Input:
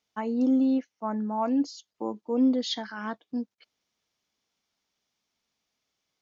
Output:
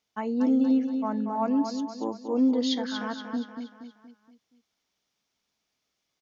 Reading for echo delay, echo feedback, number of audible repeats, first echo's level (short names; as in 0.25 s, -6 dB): 0.236 s, 46%, 5, -7.0 dB